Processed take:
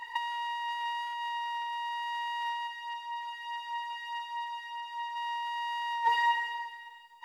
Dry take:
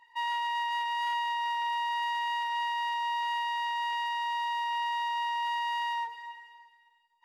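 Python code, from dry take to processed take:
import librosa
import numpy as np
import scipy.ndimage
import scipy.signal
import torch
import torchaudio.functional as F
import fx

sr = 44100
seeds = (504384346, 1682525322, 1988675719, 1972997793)

y = fx.over_compress(x, sr, threshold_db=-38.0, ratio=-0.5)
y = fx.comb_cascade(y, sr, direction='falling', hz=1.6, at=(2.66, 5.15), fade=0.02)
y = F.gain(torch.from_numpy(y), 7.5).numpy()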